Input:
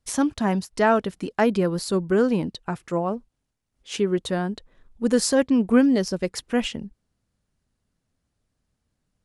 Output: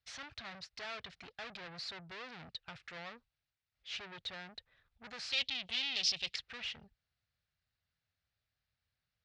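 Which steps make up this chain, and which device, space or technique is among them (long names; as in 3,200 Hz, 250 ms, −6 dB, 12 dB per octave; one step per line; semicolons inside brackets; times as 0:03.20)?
scooped metal amplifier (tube saturation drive 34 dB, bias 0.4; loudspeaker in its box 92–4,200 Hz, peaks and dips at 200 Hz −6 dB, 280 Hz +5 dB, 1,000 Hz −7 dB, 3,100 Hz −4 dB; guitar amp tone stack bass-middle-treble 10-0-10)
0:05.32–0:06.36: high shelf with overshoot 2,100 Hz +13 dB, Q 3
level +3.5 dB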